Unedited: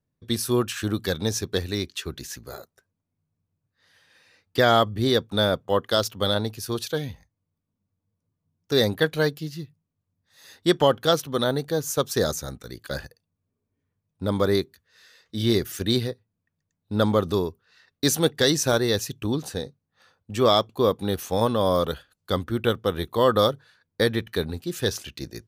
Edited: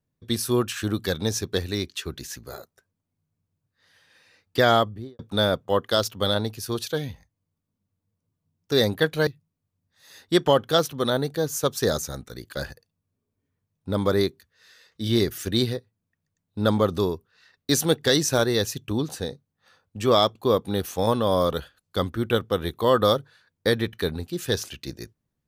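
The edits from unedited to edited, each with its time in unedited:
4.7–5.19 studio fade out
9.27–9.61 cut

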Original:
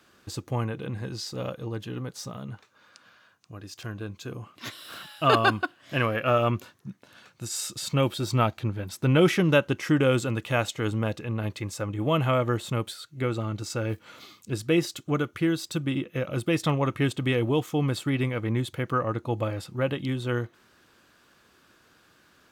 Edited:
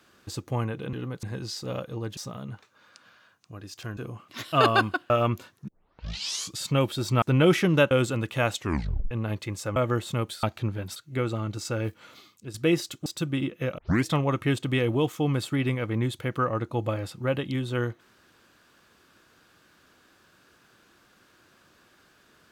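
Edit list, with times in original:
1.87–2.17 move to 0.93
3.97–4.24 cut
4.79–5.21 cut
5.79–6.32 cut
6.9 tape start 0.89 s
8.44–8.97 move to 13.01
9.66–10.05 cut
10.73 tape stop 0.52 s
11.9–12.34 cut
13.89–14.59 fade out, to -10.5 dB
15.11–15.6 cut
16.32 tape start 0.27 s

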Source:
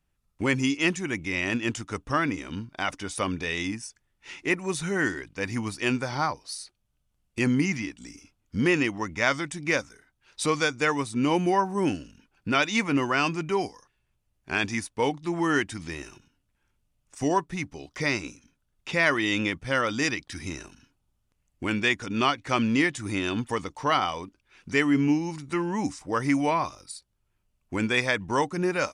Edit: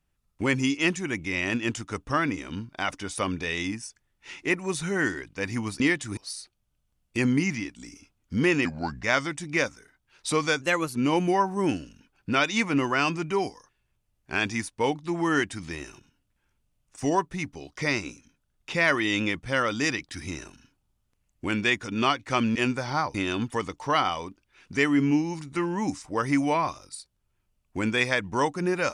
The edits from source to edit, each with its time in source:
5.8–6.39 swap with 22.74–23.11
8.87–9.17 speed 78%
10.75–11.14 speed 115%

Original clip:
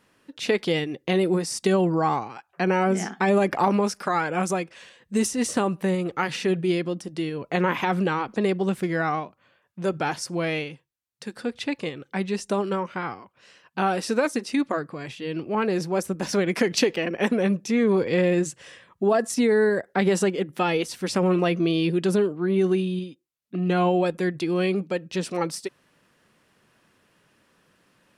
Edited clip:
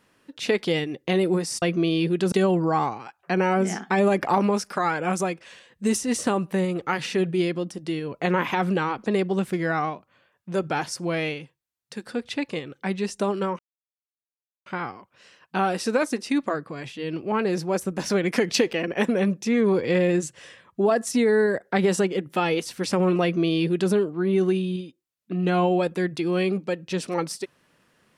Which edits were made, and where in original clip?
12.89 insert silence 1.07 s
21.45–22.15 copy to 1.62

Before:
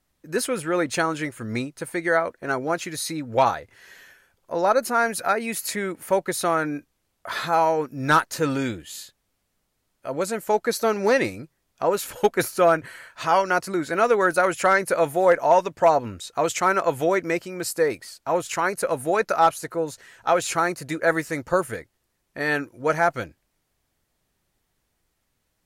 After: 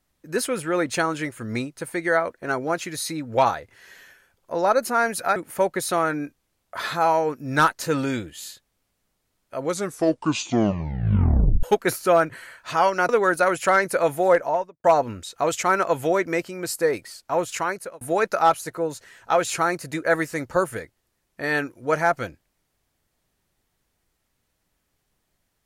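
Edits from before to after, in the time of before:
5.36–5.88 cut
10.11 tape stop 2.04 s
13.61–14.06 cut
15.25–15.81 studio fade out
18.53–18.98 fade out

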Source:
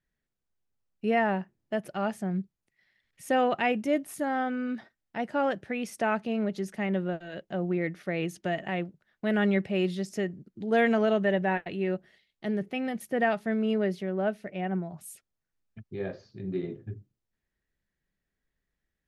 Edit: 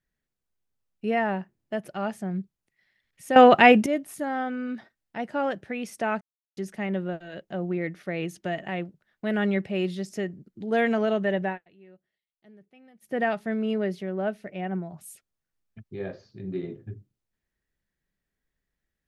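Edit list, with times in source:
3.36–3.86 gain +12 dB
6.21–6.57 mute
11.46–13.14 dip -23 dB, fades 0.13 s

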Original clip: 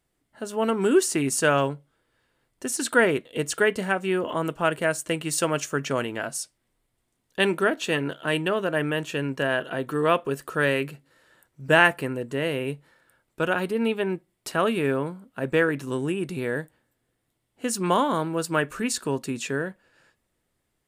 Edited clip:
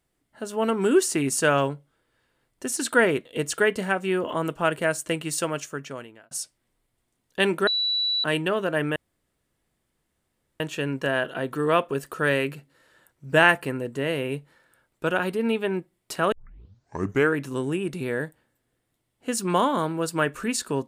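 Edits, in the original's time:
5.12–6.31 fade out
7.67–8.24 bleep 3940 Hz -21.5 dBFS
8.96 insert room tone 1.64 s
14.68 tape start 1.01 s

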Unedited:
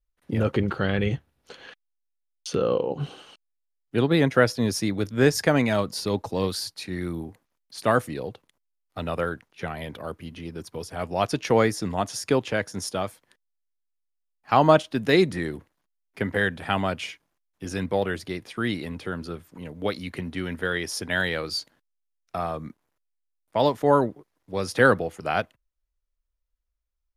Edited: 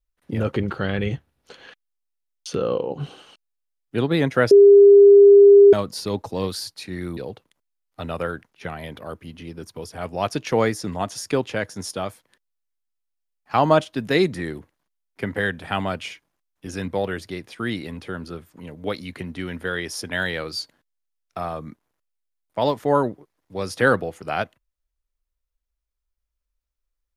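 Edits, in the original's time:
4.51–5.73 bleep 402 Hz -6 dBFS
7.17–8.15 cut

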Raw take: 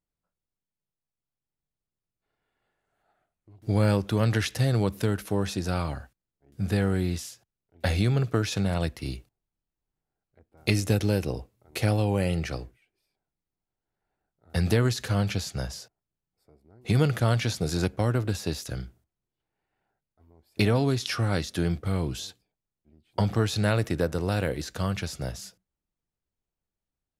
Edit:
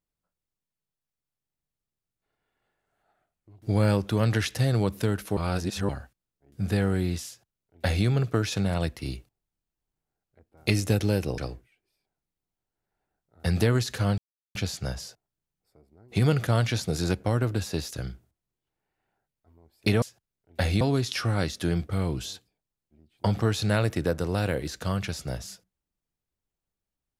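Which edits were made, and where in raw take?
5.37–5.89 reverse
7.27–8.06 copy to 20.75
11.38–12.48 cut
15.28 insert silence 0.37 s

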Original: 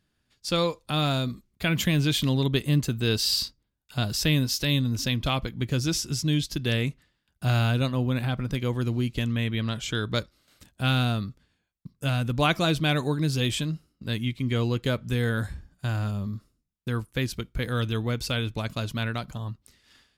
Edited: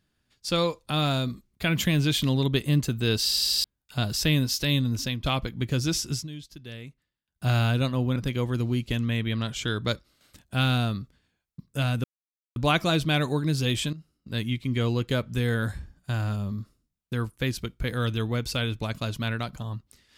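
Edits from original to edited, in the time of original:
3.24 stutter in place 0.08 s, 5 plays
4.94–5.24 fade out, to -7.5 dB
6.14–7.46 dip -15 dB, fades 0.14 s
8.16–8.43 cut
12.31 insert silence 0.52 s
13.68–14.14 fade in, from -15.5 dB

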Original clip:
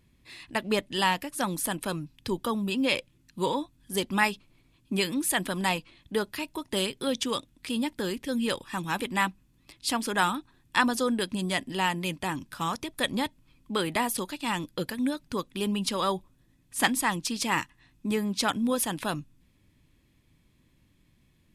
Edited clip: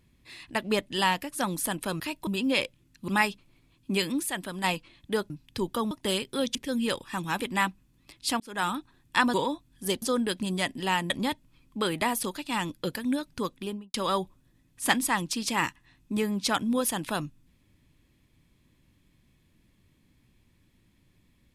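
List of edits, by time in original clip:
2–2.61 swap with 6.32–6.59
3.42–4.1 move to 10.94
5.25–5.66 gain -5.5 dB
7.23–8.15 cut
10–10.36 fade in
12.02–13.04 cut
15.45–15.88 studio fade out

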